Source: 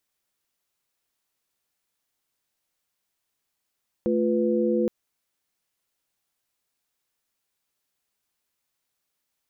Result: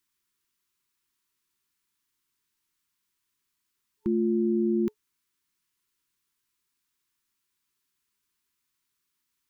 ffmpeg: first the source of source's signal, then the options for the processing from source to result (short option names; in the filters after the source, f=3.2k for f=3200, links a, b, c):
-f lavfi -i "aevalsrc='0.0596*(sin(2*PI*220*t)+sin(2*PI*349.23*t)+sin(2*PI*493.88*t))':d=0.82:s=44100"
-af "afftfilt=real='re*(1-between(b*sr/4096,420,890))':imag='im*(1-between(b*sr/4096,420,890))':win_size=4096:overlap=0.75"